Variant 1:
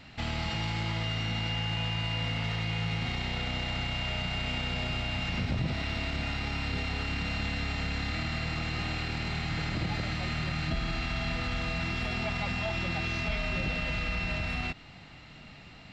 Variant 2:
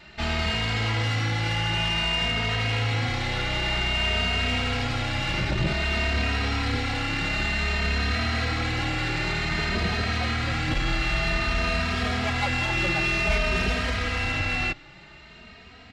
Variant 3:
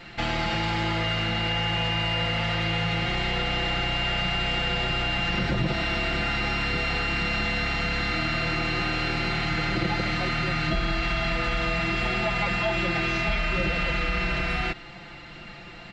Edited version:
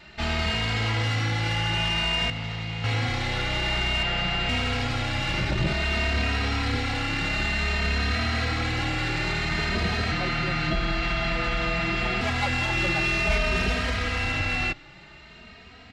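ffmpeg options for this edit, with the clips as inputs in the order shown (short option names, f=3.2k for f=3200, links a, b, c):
-filter_complex "[2:a]asplit=2[a][b];[1:a]asplit=4[c][d][e][f];[c]atrim=end=2.302[g];[0:a]atrim=start=2.298:end=2.842[h];[d]atrim=start=2.838:end=4.032[i];[a]atrim=start=4.028:end=4.492[j];[e]atrim=start=4.488:end=10.122[k];[b]atrim=start=10.118:end=12.212[l];[f]atrim=start=12.208[m];[g][h]acrossfade=d=0.004:c1=hsin:c2=hsin[n];[n][i]acrossfade=d=0.004:c1=hsin:c2=hsin[o];[o][j]acrossfade=d=0.004:c1=hsin:c2=hsin[p];[p][k]acrossfade=d=0.004:c1=hsin:c2=hsin[q];[q][l]acrossfade=d=0.004:c1=hsin:c2=hsin[r];[r][m]acrossfade=d=0.004:c1=hsin:c2=hsin"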